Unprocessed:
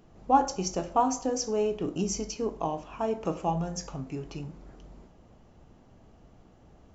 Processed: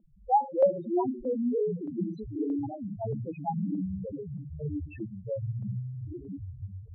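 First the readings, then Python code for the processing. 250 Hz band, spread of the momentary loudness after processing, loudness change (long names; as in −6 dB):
+1.5 dB, 14 LU, −2.0 dB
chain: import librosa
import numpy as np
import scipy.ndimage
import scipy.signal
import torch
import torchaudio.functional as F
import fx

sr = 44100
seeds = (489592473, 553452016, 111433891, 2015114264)

y = fx.echo_pitch(x, sr, ms=98, semitones=-7, count=3, db_per_echo=-3.0)
y = fx.spec_topn(y, sr, count=2)
y = fx.filter_lfo_lowpass(y, sr, shape='saw_up', hz=1.6, low_hz=570.0, high_hz=5600.0, q=1.8)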